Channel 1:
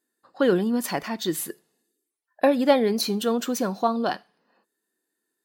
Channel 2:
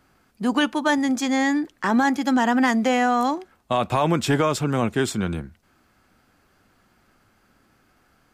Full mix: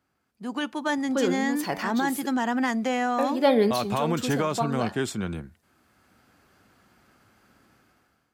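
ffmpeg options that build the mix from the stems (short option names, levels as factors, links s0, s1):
-filter_complex "[0:a]bandreject=f=95.63:t=h:w=4,bandreject=f=191.26:t=h:w=4,bandreject=f=286.89:t=h:w=4,bandreject=f=382.52:t=h:w=4,bandreject=f=478.15:t=h:w=4,bandreject=f=573.78:t=h:w=4,bandreject=f=669.41:t=h:w=4,bandreject=f=765.04:t=h:w=4,bandreject=f=860.67:t=h:w=4,bandreject=f=956.3:t=h:w=4,bandreject=f=1051.93:t=h:w=4,bandreject=f=1147.56:t=h:w=4,bandreject=f=1243.19:t=h:w=4,bandreject=f=1338.82:t=h:w=4,bandreject=f=1434.45:t=h:w=4,bandreject=f=1530.08:t=h:w=4,bandreject=f=1625.71:t=h:w=4,bandreject=f=1721.34:t=h:w=4,bandreject=f=1816.97:t=h:w=4,bandreject=f=1912.6:t=h:w=4,bandreject=f=2008.23:t=h:w=4,bandreject=f=2103.86:t=h:w=4,bandreject=f=2199.49:t=h:w=4,bandreject=f=2295.12:t=h:w=4,bandreject=f=2390.75:t=h:w=4,bandreject=f=2486.38:t=h:w=4,bandreject=f=2582.01:t=h:w=4,bandreject=f=2677.64:t=h:w=4,adelay=750,volume=1.26[s0];[1:a]highpass=60,dynaudnorm=f=180:g=7:m=5.62,volume=0.2,asplit=2[s1][s2];[s2]apad=whole_len=273132[s3];[s0][s3]sidechaincompress=threshold=0.0178:ratio=3:attack=16:release=278[s4];[s4][s1]amix=inputs=2:normalize=0"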